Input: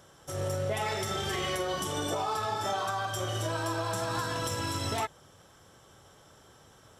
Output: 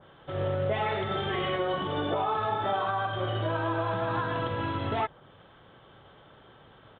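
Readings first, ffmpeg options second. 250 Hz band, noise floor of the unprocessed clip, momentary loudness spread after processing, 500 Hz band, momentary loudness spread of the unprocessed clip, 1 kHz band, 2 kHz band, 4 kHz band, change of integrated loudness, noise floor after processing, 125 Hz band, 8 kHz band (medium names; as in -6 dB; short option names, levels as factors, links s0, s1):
+3.5 dB, -58 dBFS, 3 LU, +3.5 dB, 2 LU, +3.0 dB, +2.0 dB, -2.5 dB, +2.0 dB, -55 dBFS, +2.5 dB, under -40 dB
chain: -af "equalizer=f=78:t=o:w=0.21:g=-14.5,aresample=8000,aresample=44100,adynamicequalizer=threshold=0.00398:dfrequency=2000:dqfactor=0.7:tfrequency=2000:tqfactor=0.7:attack=5:release=100:ratio=0.375:range=2.5:mode=cutabove:tftype=highshelf,volume=1.5"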